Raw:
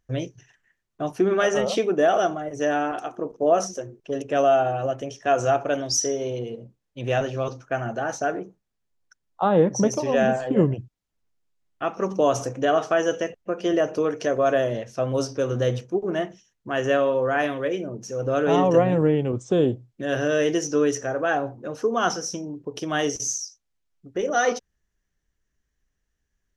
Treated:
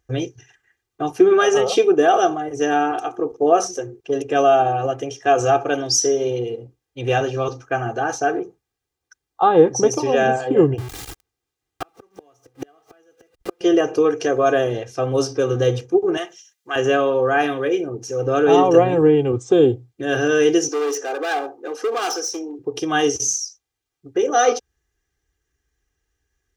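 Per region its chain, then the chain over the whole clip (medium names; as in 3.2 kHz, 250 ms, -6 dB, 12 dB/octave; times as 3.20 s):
10.78–13.61 s: jump at every zero crossing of -30.5 dBFS + inverted gate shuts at -18 dBFS, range -40 dB
16.17–16.76 s: high-pass 1.2 kHz 6 dB/octave + treble shelf 2.4 kHz +8.5 dB
20.68–22.59 s: hard clipper -25.5 dBFS + high-pass 310 Hz 24 dB/octave
whole clip: comb 2.5 ms, depth 78%; dynamic bell 2 kHz, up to -6 dB, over -51 dBFS, Q 7.7; high-pass 52 Hz; trim +3.5 dB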